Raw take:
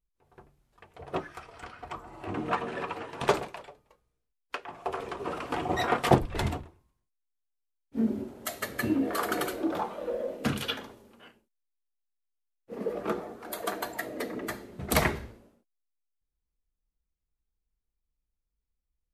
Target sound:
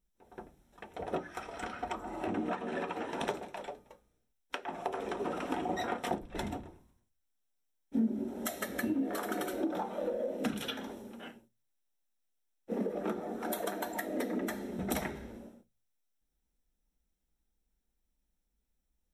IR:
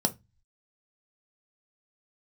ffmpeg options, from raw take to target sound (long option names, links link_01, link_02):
-filter_complex "[0:a]acompressor=threshold=-39dB:ratio=8,asplit=2[link_01][link_02];[1:a]atrim=start_sample=2205,highshelf=frequency=5800:gain=5.5[link_03];[link_02][link_03]afir=irnorm=-1:irlink=0,volume=-12dB[link_04];[link_01][link_04]amix=inputs=2:normalize=0,volume=2dB"